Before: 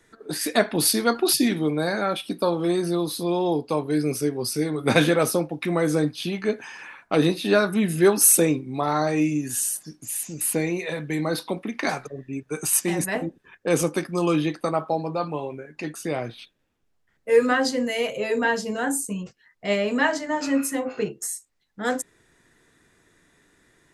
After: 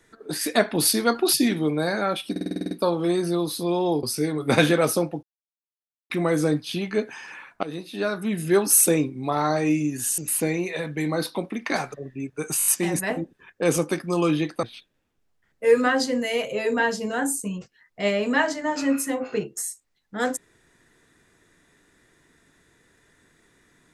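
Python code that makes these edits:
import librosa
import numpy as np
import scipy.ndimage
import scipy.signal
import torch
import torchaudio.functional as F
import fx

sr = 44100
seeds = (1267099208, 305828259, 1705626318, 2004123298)

y = fx.edit(x, sr, fx.stutter(start_s=2.31, slice_s=0.05, count=9),
    fx.cut(start_s=3.63, length_s=0.78),
    fx.insert_silence(at_s=5.61, length_s=0.87),
    fx.fade_in_from(start_s=7.14, length_s=1.74, curve='qsin', floor_db=-18.5),
    fx.cut(start_s=9.69, length_s=0.62),
    fx.stutter(start_s=12.71, slice_s=0.02, count=5),
    fx.cut(start_s=14.68, length_s=1.6), tone=tone)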